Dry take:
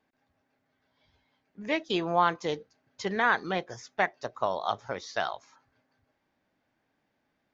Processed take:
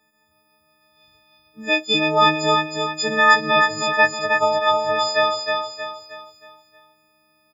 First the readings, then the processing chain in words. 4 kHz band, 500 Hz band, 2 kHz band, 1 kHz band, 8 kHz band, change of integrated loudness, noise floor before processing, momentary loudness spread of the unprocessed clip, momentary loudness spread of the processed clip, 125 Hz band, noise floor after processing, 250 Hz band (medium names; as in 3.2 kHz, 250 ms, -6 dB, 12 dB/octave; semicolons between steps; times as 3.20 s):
+17.0 dB, +11.0 dB, +13.0 dB, +11.0 dB, no reading, +12.0 dB, -77 dBFS, 12 LU, 12 LU, +8.0 dB, -64 dBFS, +8.0 dB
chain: partials quantised in pitch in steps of 6 st; feedback delay 315 ms, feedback 41%, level -4 dB; trim +5 dB